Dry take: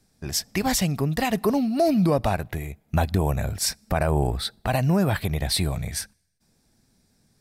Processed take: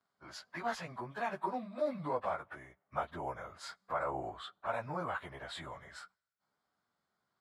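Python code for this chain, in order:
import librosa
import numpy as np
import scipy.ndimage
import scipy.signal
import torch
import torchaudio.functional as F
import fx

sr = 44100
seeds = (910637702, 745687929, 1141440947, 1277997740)

y = fx.pitch_bins(x, sr, semitones=-2.0)
y = fx.bandpass_q(y, sr, hz=1100.0, q=2.5)
y = y * 10.0 ** (1.0 / 20.0)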